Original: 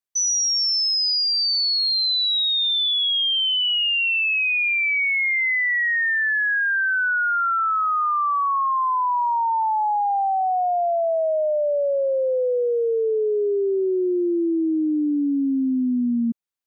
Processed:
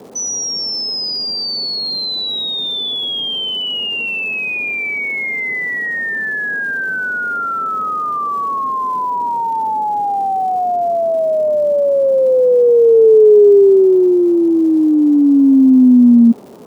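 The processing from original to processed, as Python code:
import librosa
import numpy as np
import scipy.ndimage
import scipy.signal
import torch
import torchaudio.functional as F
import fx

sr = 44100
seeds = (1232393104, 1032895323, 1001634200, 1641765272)

y = fx.dmg_noise_band(x, sr, seeds[0], low_hz=98.0, high_hz=1000.0, level_db=-47.0)
y = fx.small_body(y, sr, hz=(240.0, 410.0), ring_ms=25, db=14)
y = fx.dmg_crackle(y, sr, seeds[1], per_s=380.0, level_db=-36.0)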